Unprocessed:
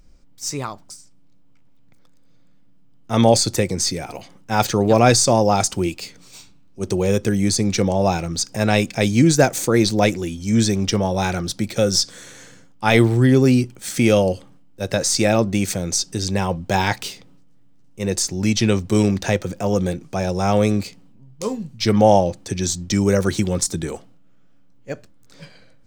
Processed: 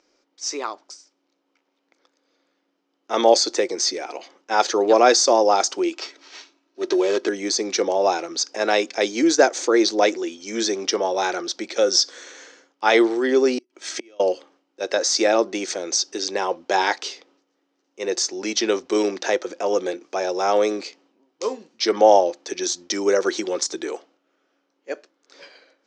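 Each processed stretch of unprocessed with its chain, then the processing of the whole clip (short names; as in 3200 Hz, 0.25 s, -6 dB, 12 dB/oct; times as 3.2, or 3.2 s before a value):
5.93–7.29 comb 3.1 ms, depth 52% + sample-rate reducer 10000 Hz
13.58–14.2 comb 3.1 ms, depth 41% + flipped gate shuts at -12 dBFS, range -34 dB
whole clip: elliptic band-pass 340–6100 Hz, stop band 40 dB; dynamic EQ 2500 Hz, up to -5 dB, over -39 dBFS, Q 3.1; gain +1.5 dB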